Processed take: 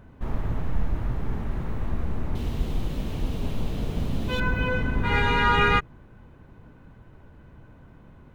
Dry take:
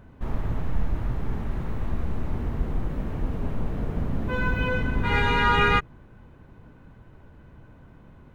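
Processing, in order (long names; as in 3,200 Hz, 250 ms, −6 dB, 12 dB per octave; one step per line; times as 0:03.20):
0:02.35–0:04.40: high shelf with overshoot 2,400 Hz +11 dB, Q 1.5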